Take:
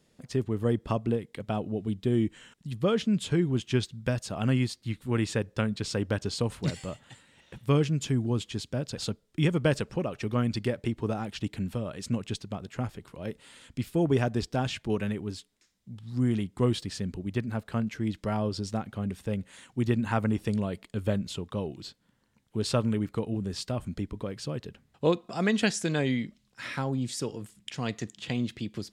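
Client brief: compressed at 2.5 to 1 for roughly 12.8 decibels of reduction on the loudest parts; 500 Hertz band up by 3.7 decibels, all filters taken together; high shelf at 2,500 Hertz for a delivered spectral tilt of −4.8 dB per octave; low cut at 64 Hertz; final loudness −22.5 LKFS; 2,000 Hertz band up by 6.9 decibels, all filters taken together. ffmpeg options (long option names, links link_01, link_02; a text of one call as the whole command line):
ffmpeg -i in.wav -af "highpass=64,equalizer=frequency=500:width_type=o:gain=4,equalizer=frequency=2000:width_type=o:gain=6,highshelf=frequency=2500:gain=5.5,acompressor=threshold=-37dB:ratio=2.5,volume=15.5dB" out.wav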